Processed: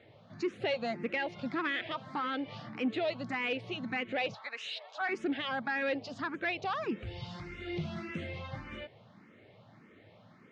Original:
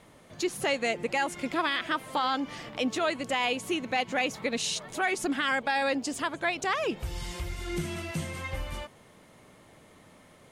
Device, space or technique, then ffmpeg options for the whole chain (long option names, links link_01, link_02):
barber-pole phaser into a guitar amplifier: -filter_complex "[0:a]asettb=1/sr,asplit=3[link_01][link_02][link_03];[link_01]atrim=end=4.344[link_04];[link_02]atrim=start=4.34:end=5.09,asetpts=PTS-STARTPTS,afade=type=in:duration=0.004:curve=qsin,afade=type=out:start_time=0.746:duration=0.004:curve=qsin,highpass=frequency=610:width=0.5412,highpass=frequency=610:width=1.3066[link_05];[link_03]atrim=start=5.086[link_06];[link_04][link_05]acrossfade=duration=0.004:curve1=hsin:curve2=qsin[link_07];[link_07][link_06]acrossfade=duration=0.004:curve1=qsin:curve2=hsin,asplit=2[link_08][link_09];[link_09]afreqshift=1.7[link_10];[link_08][link_10]amix=inputs=2:normalize=1,asoftclip=type=tanh:threshold=-24.5dB,highpass=110,equalizer=frequency=110:width_type=q:width=4:gain=10,equalizer=frequency=210:width_type=q:width=4:gain=4,equalizer=frequency=1000:width_type=q:width=4:gain=-5,equalizer=frequency=3200:width_type=q:width=4:gain=-3,lowpass=frequency=4100:width=0.5412,lowpass=frequency=4100:width=1.3066"